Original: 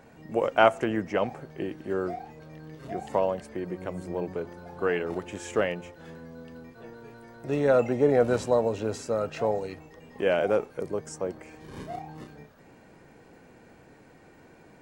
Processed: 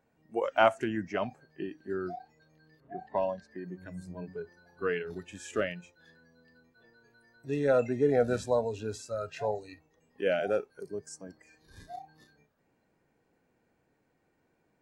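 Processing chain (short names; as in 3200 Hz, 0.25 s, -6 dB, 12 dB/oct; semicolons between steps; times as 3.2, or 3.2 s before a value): 2.8–3.51 low-pass opened by the level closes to 1200 Hz, open at -21.5 dBFS; spectral noise reduction 16 dB; gain -3.5 dB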